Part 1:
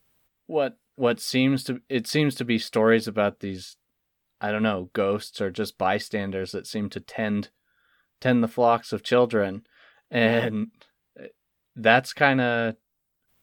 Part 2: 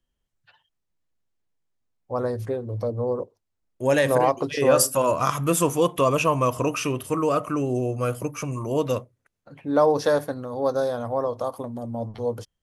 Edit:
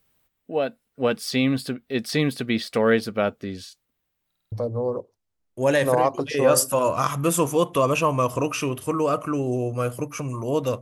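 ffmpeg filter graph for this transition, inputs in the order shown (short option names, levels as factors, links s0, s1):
-filter_complex "[0:a]apad=whole_dur=10.81,atrim=end=10.81,asplit=5[s0][s1][s2][s3][s4];[s0]atrim=end=4.322[s5];[s1]atrim=start=4.268:end=4.322[s6];[s2]atrim=start=4.268:end=4.322[s7];[s3]atrim=start=4.268:end=4.322[s8];[s4]atrim=start=4.268:end=4.322[s9];[1:a]atrim=start=2.748:end=9.04[s10];[s5][s6]acrossfade=d=0.004:c1=hsin:c2=hsin[s11];[s11][s7]acrossfade=d=0.004:c1=hsin:c2=hsin[s12];[s12][s8]acrossfade=d=0.004:c1=hsin:c2=hsin[s13];[s13][s9]acrossfade=d=0.004:c1=hsin:c2=hsin[s14];[s14][s10]acrossfade=d=0.004:c1=hsin:c2=hsin"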